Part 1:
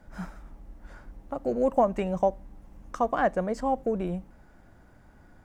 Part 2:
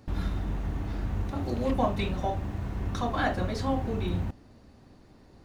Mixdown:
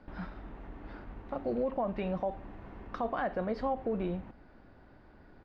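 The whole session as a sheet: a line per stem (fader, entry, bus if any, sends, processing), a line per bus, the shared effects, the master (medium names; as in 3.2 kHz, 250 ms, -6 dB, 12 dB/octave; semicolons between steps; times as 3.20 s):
-2.5 dB, 0.00 s, no send, elliptic low-pass 4.8 kHz, stop band 40 dB
-3.5 dB, 0.4 ms, polarity flipped, no send, compression 3:1, threshold -34 dBFS, peak gain reduction 10.5 dB; three-band isolator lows -15 dB, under 220 Hz, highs -23 dB, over 3.1 kHz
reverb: none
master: peak limiter -24 dBFS, peak gain reduction 9 dB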